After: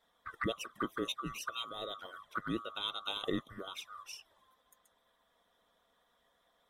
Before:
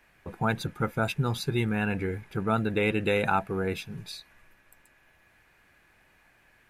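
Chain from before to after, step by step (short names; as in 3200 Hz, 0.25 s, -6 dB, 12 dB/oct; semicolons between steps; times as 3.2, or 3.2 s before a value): band-swap scrambler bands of 1000 Hz; envelope flanger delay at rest 4.4 ms, full sweep at -25 dBFS; harmonic-percussive split harmonic -10 dB; gain -3 dB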